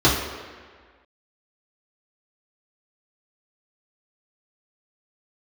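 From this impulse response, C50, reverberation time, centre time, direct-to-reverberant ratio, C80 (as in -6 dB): 3.5 dB, 1.7 s, 57 ms, -8.5 dB, 6.0 dB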